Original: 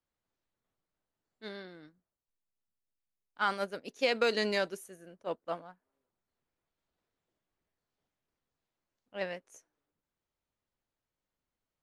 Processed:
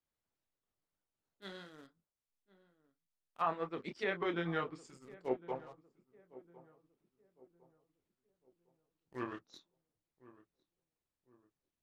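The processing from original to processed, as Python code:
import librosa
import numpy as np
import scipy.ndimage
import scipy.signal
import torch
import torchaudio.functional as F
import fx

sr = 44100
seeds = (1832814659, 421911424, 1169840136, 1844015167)

p1 = fx.pitch_glide(x, sr, semitones=-10.5, runs='starting unshifted')
p2 = fx.chorus_voices(p1, sr, voices=4, hz=0.94, base_ms=27, depth_ms=4.1, mix_pct=30)
p3 = fx.hpss(p2, sr, part='harmonic', gain_db=-6)
p4 = fx.quant_companded(p3, sr, bits=4)
p5 = p3 + (p4 * librosa.db_to_amplitude(-11.0))
p6 = fx.env_lowpass_down(p5, sr, base_hz=1700.0, full_db=-35.0)
p7 = p6 + fx.echo_filtered(p6, sr, ms=1056, feedback_pct=41, hz=990.0, wet_db=-18, dry=0)
y = p7 * librosa.db_to_amplitude(1.0)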